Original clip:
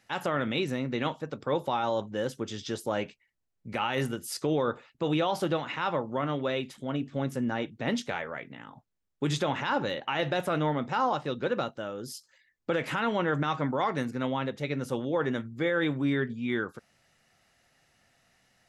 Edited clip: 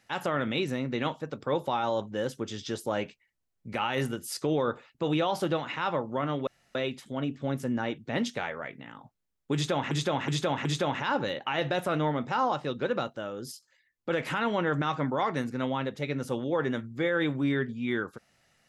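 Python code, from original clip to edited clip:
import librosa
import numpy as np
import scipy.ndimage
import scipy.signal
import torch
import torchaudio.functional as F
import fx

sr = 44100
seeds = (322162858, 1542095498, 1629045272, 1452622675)

y = fx.edit(x, sr, fx.insert_room_tone(at_s=6.47, length_s=0.28),
    fx.repeat(start_s=9.26, length_s=0.37, count=4),
    fx.clip_gain(start_s=12.13, length_s=0.58, db=-3.5), tone=tone)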